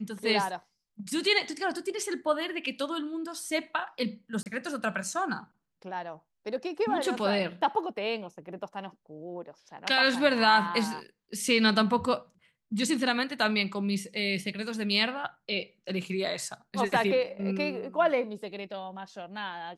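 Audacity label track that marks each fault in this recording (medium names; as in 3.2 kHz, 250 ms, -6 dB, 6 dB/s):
4.430000	4.460000	dropout 29 ms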